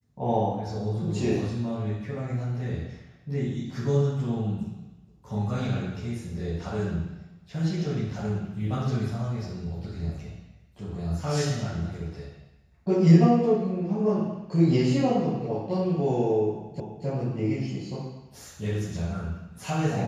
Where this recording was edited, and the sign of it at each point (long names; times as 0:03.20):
0:16.80: the same again, the last 0.26 s